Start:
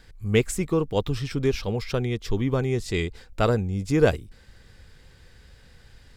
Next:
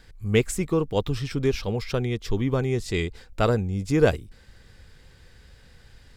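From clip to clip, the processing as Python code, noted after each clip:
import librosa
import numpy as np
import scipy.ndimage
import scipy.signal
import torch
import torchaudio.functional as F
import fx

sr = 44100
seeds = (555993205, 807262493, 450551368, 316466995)

y = x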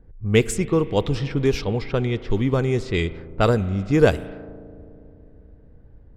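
y = fx.rev_spring(x, sr, rt60_s=3.6, pass_ms=(36,), chirp_ms=30, drr_db=15.0)
y = fx.env_lowpass(y, sr, base_hz=460.0, full_db=-19.0)
y = y * librosa.db_to_amplitude(3.5)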